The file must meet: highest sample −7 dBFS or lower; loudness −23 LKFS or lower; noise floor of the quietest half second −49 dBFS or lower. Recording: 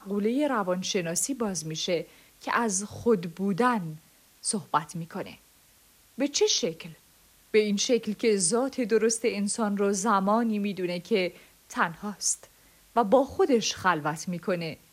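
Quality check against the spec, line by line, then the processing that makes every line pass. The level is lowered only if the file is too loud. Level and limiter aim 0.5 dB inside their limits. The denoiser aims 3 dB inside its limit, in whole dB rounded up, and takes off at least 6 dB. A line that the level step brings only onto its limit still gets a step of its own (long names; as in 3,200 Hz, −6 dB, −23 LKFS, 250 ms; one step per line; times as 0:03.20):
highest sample −10.0 dBFS: in spec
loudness −27.0 LKFS: in spec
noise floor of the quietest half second −59 dBFS: in spec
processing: no processing needed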